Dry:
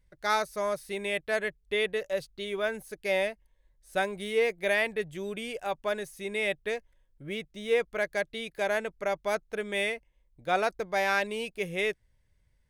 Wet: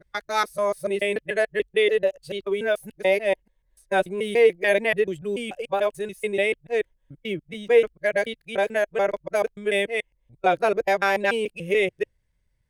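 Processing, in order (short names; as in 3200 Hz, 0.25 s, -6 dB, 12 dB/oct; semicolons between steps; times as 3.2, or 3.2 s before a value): local time reversal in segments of 0.145 s; spectral noise reduction 7 dB; dynamic EQ 380 Hz, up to +5 dB, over -40 dBFS, Q 0.87; gain +5 dB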